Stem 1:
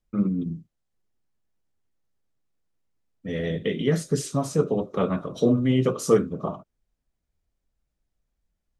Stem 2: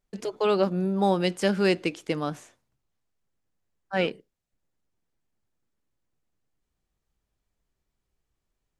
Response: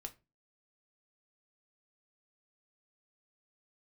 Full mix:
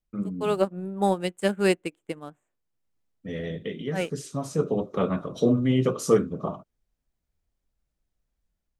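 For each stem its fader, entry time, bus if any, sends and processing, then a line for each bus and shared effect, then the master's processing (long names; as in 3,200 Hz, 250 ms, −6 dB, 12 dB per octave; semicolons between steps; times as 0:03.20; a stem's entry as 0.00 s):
−5.5 dB, 0.00 s, no send, automatic ducking −8 dB, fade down 0.90 s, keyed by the second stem
−2.0 dB, 0.00 s, no send, adaptive Wiener filter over 9 samples; high shelf with overshoot 6,700 Hz +7 dB, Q 3; expander for the loud parts 2.5 to 1, over −37 dBFS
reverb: not used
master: automatic gain control gain up to 4.5 dB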